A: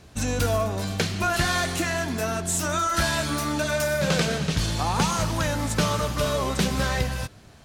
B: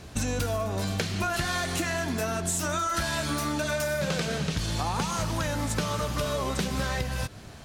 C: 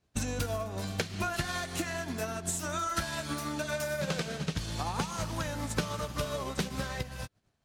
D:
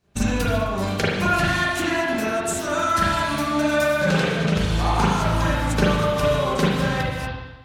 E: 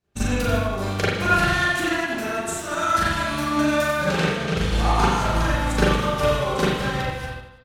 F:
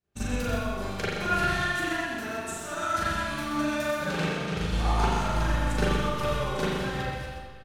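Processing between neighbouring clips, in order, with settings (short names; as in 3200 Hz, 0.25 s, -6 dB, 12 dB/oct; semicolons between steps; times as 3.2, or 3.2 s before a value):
compressor 6:1, threshold -31 dBFS, peak gain reduction 13 dB; gain +5 dB
bell 71 Hz -5 dB 0.21 oct; upward expander 2.5:1, over -47 dBFS
spring tank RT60 1.1 s, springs 37/42 ms, chirp 40 ms, DRR -8 dB; gain +5 dB
reverse bouncing-ball echo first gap 40 ms, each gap 1.25×, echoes 5; upward expander 1.5:1, over -35 dBFS
on a send: echo 0.127 s -6.5 dB; on the sum: digital reverb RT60 2.1 s, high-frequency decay 0.9×, pre-delay 85 ms, DRR 11.5 dB; gain -8 dB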